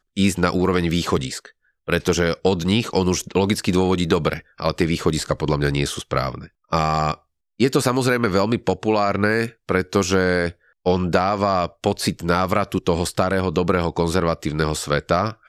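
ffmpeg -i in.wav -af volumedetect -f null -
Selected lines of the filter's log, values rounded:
mean_volume: -20.8 dB
max_volume: -5.1 dB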